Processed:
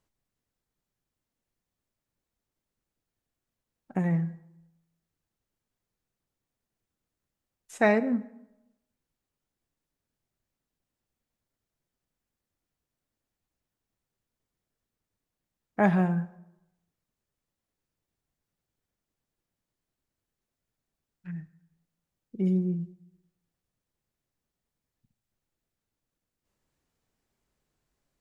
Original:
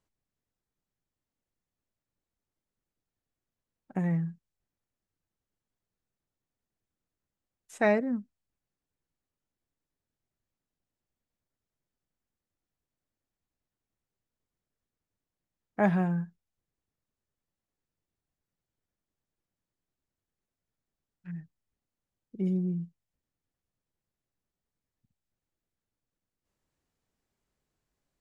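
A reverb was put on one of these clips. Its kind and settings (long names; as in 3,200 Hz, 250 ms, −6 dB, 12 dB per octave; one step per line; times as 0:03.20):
dense smooth reverb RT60 0.87 s, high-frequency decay 0.7×, DRR 13 dB
level +3 dB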